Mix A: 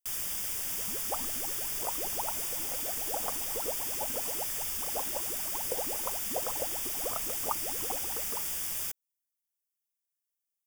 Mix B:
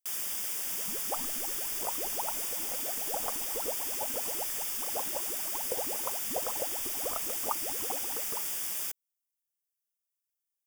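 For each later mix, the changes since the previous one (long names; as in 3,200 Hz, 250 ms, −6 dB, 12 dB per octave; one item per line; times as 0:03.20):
first sound: add high-pass filter 210 Hz 12 dB per octave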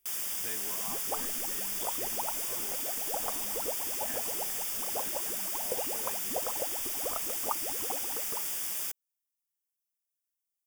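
speech: unmuted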